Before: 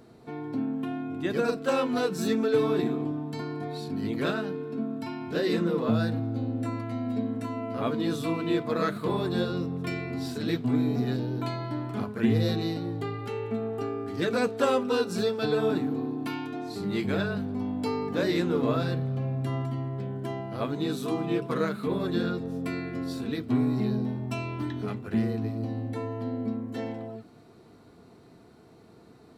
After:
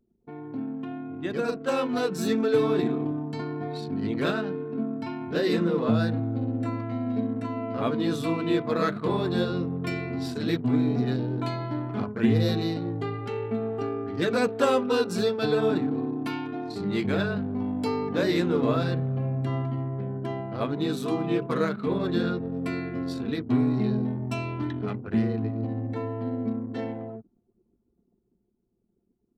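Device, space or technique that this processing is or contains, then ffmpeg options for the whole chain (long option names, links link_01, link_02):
voice memo with heavy noise removal: -af "anlmdn=0.398,dynaudnorm=framelen=280:gausssize=13:maxgain=5dB,volume=-3dB"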